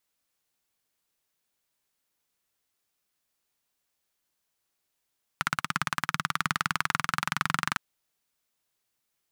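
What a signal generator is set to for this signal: single-cylinder engine model, changing speed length 2.36 s, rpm 2000, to 2800, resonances 160/1300 Hz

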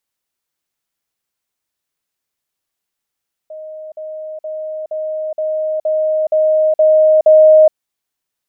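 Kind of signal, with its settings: level ladder 623 Hz -27.5 dBFS, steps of 3 dB, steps 9, 0.42 s 0.05 s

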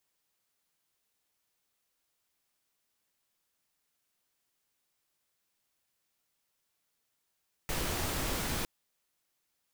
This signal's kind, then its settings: noise pink, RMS -33.5 dBFS 0.96 s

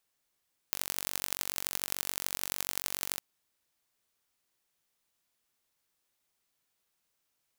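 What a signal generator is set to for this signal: pulse train 46.9/s, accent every 4, -3 dBFS 2.46 s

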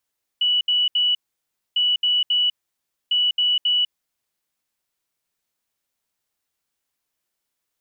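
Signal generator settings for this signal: beep pattern sine 2950 Hz, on 0.20 s, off 0.07 s, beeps 3, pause 0.61 s, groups 3, -16 dBFS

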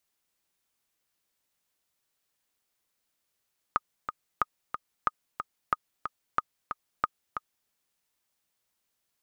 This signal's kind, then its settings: metronome 183 bpm, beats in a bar 2, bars 6, 1240 Hz, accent 8 dB -10.5 dBFS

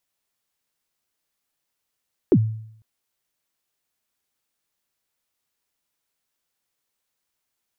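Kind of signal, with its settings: kick drum length 0.50 s, from 440 Hz, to 110 Hz, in 59 ms, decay 0.68 s, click off, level -9 dB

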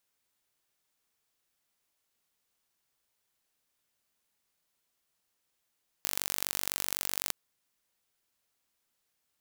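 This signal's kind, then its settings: pulse train 47.9/s, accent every 2, -3 dBFS 1.27 s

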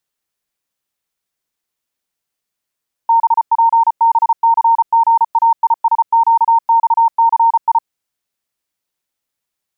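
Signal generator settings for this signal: Morse "BPBCGAISQXCI" 34 wpm 918 Hz -7 dBFS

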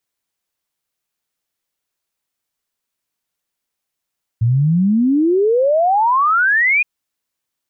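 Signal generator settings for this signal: log sweep 110 Hz -> 2500 Hz 2.42 s -11 dBFS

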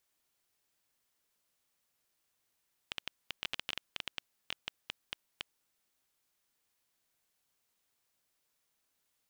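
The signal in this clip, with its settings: random clicks 8.9/s -18 dBFS 2.74 s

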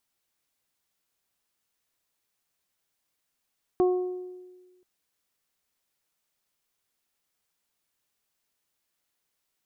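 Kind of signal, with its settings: additive tone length 1.03 s, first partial 364 Hz, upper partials -10/-18 dB, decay 1.41 s, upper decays 0.86/0.69 s, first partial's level -17.5 dB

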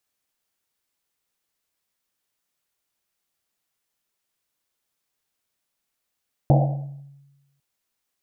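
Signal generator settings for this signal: Risset drum, pitch 140 Hz, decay 1.16 s, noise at 650 Hz, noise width 280 Hz, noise 30%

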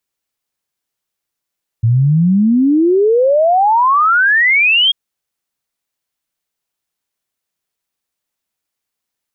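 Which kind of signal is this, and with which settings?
log sweep 110 Hz -> 3300 Hz 3.09 s -8 dBFS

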